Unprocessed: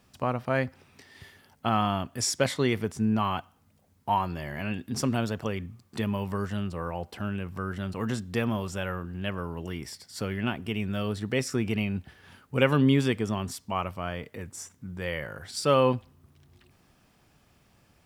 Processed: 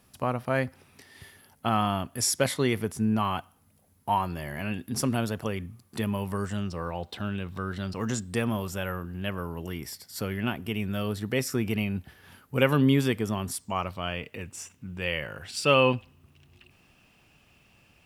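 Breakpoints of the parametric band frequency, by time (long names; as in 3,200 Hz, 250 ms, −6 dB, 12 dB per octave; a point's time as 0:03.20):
parametric band +14 dB 0.33 octaves
0:06.29 11,000 Hz
0:06.95 3,700 Hz
0:07.70 3,700 Hz
0:08.57 12,000 Hz
0:13.48 12,000 Hz
0:14.10 2,700 Hz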